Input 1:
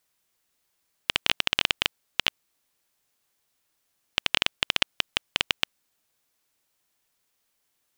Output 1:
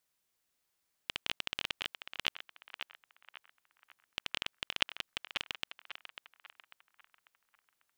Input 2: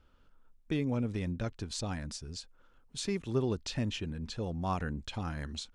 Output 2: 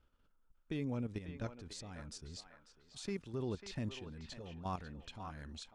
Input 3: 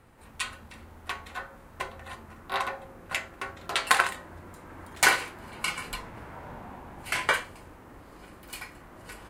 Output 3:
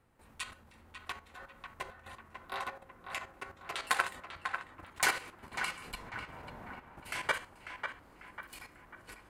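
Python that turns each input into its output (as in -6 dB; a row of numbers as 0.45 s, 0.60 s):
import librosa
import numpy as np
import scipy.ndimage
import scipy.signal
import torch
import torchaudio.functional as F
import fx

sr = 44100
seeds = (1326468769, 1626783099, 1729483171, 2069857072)

p1 = fx.level_steps(x, sr, step_db=11)
p2 = p1 + fx.echo_banded(p1, sr, ms=545, feedback_pct=47, hz=1300.0, wet_db=-6.0, dry=0)
y = p2 * librosa.db_to_amplitude(-4.5)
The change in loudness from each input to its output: -12.5 LU, -8.0 LU, -9.0 LU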